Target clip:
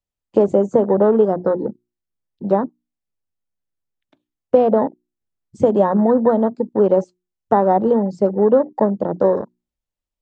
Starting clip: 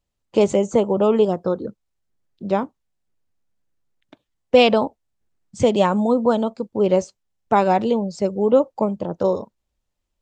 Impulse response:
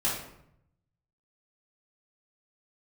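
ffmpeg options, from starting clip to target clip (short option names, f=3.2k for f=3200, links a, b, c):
-filter_complex "[0:a]acrossover=split=150|990[a][b][c];[a]acompressor=threshold=-48dB:ratio=4[d];[b]acompressor=threshold=-17dB:ratio=4[e];[c]acompressor=threshold=-39dB:ratio=4[f];[d][e][f]amix=inputs=3:normalize=0,bandreject=f=60:t=h:w=6,bandreject=f=120:t=h:w=6,bandreject=f=180:t=h:w=6,bandreject=f=240:t=h:w=6,bandreject=f=300:t=h:w=6,bandreject=f=360:t=h:w=6,afwtdn=0.0282,volume=6.5dB"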